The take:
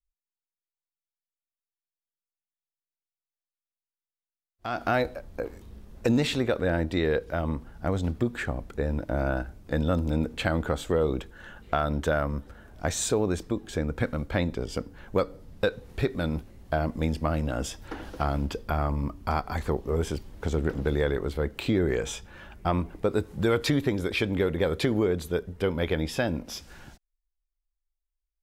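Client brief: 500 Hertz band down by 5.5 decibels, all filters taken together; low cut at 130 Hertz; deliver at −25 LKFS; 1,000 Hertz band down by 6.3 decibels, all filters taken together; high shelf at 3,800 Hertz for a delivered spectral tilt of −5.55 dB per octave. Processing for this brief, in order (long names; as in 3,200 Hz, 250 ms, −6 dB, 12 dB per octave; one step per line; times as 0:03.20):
high-pass filter 130 Hz
parametric band 500 Hz −5 dB
parametric band 1,000 Hz −7 dB
high-shelf EQ 3,800 Hz −6.5 dB
level +8 dB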